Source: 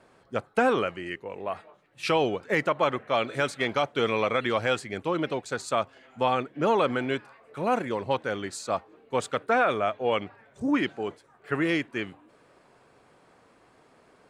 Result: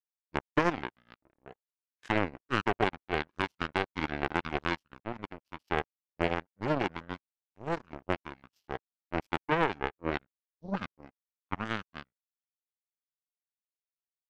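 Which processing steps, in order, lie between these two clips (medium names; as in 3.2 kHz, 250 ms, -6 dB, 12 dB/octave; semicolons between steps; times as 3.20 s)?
power-law waveshaper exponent 3; pitch shift -7 st; trim +2.5 dB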